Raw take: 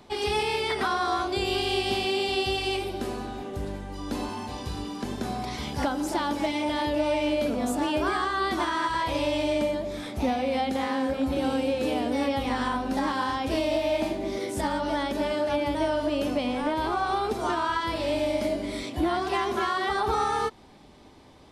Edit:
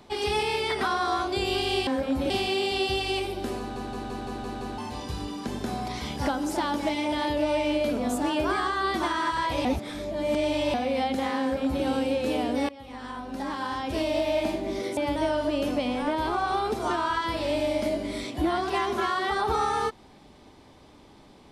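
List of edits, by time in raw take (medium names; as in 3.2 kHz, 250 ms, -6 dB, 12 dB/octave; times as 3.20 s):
3.16 s: stutter in place 0.17 s, 7 plays
9.22–10.31 s: reverse
10.98–11.41 s: copy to 1.87 s
12.26–13.80 s: fade in, from -21.5 dB
14.54–15.56 s: delete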